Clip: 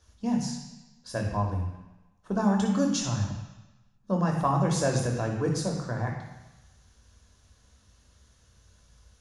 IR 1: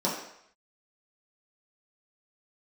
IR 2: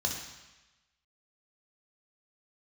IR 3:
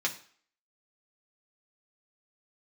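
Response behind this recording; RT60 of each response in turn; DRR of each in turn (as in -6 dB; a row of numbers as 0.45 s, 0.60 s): 2; 0.70 s, 1.1 s, 0.50 s; -7.0 dB, 1.0 dB, -1.5 dB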